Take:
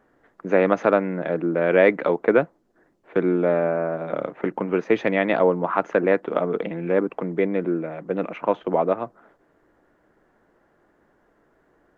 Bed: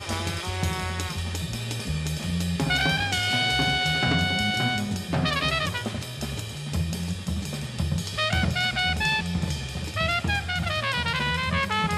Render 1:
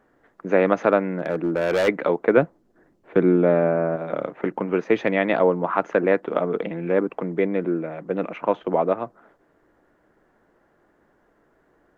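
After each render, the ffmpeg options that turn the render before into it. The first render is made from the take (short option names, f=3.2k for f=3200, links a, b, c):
-filter_complex "[0:a]asplit=3[a][b][c];[a]afade=t=out:st=1.03:d=0.02[d];[b]volume=17dB,asoftclip=hard,volume=-17dB,afade=t=in:st=1.03:d=0.02,afade=t=out:st=1.87:d=0.02[e];[c]afade=t=in:st=1.87:d=0.02[f];[d][e][f]amix=inputs=3:normalize=0,asettb=1/sr,asplit=3[g][h][i];[g]atrim=end=2.374[j];[h]atrim=start=2.37:end=3.96,asetpts=PTS-STARTPTS,afade=t=in:d=0.004:c=qsin,afade=t=out:st=1.586:d=0.004:c=qsin,lowshelf=f=350:g=6.5[k];[i]atrim=start=3.956[l];[j][k]acrossfade=d=0.004:c1=hsin:c2=qsin[m];[m][l]acrossfade=d=0.004:c1=qsin:c2=hsin"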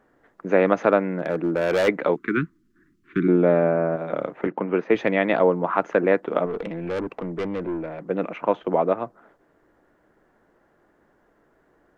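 -filter_complex "[0:a]asplit=3[a][b][c];[a]afade=t=out:st=2.14:d=0.02[d];[b]asuperstop=centerf=650:order=8:qfactor=0.75,afade=t=in:st=2.14:d=0.02,afade=t=out:st=3.27:d=0.02[e];[c]afade=t=in:st=3.27:d=0.02[f];[d][e][f]amix=inputs=3:normalize=0,asettb=1/sr,asplit=3[g][h][i];[g]atrim=end=4.474[j];[h]atrim=start=4.47:end=4.95,asetpts=PTS-STARTPTS,afade=t=in:d=0.004:c=qsin,afade=t=out:st=0.476:d=0.004:c=qsin,highpass=140,lowpass=3.5k[k];[i]atrim=start=4.946[l];[j][k]acrossfade=d=0.004:c1=hsin:c2=qsin[m];[m][l]acrossfade=d=0.004:c1=qsin:c2=hsin,asettb=1/sr,asplit=3[n][o][p];[n]atrim=end=6.464[q];[o]atrim=start=6.46:end=8,asetpts=PTS-STARTPTS,afade=t=in:d=0.004:c=qsin,afade=t=out:st=1.536:d=0.004:c=qsin,aeval=exprs='(tanh(14.1*val(0)+0.15)-tanh(0.15))/14.1':c=same[r];[p]atrim=start=7.996[s];[q][r]acrossfade=d=0.004:c1=hsin:c2=qsin[t];[t][s]acrossfade=d=0.004:c1=qsin:c2=hsin"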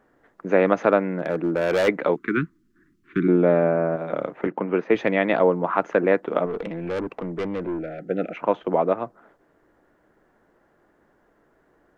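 -filter_complex "[0:a]asettb=1/sr,asplit=3[a][b][c];[a]atrim=end=7.794[d];[b]atrim=start=7.79:end=8.37,asetpts=PTS-STARTPTS,afade=t=in:d=0.004:c=qsin,afade=t=out:st=0.576:d=0.004:c=qsin,asuperstop=centerf=1000:order=20:qfactor=2.1[e];[c]atrim=start=8.366[f];[d][e]acrossfade=d=0.004:c1=hsin:c2=qsin[g];[g][f]acrossfade=d=0.004:c1=qsin:c2=hsin"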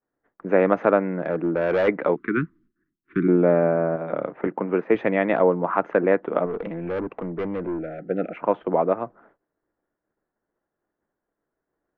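-af "agate=range=-33dB:threshold=-49dB:ratio=3:detection=peak,lowpass=2.2k"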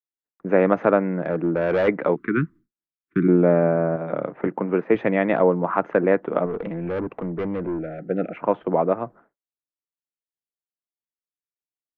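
-af "agate=range=-33dB:threshold=-42dB:ratio=3:detection=peak,equalizer=f=120:w=0.83:g=5"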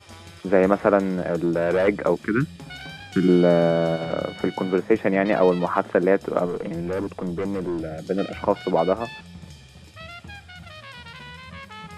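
-filter_complex "[1:a]volume=-14.5dB[a];[0:a][a]amix=inputs=2:normalize=0"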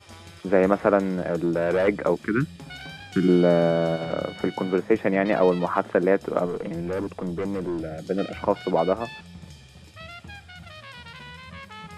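-af "volume=-1.5dB"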